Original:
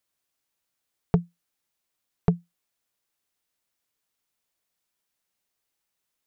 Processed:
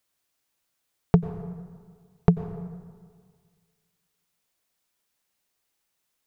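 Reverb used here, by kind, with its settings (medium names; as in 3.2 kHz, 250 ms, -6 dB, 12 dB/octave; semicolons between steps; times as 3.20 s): plate-style reverb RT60 1.8 s, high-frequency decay 0.55×, pre-delay 80 ms, DRR 11.5 dB; trim +3.5 dB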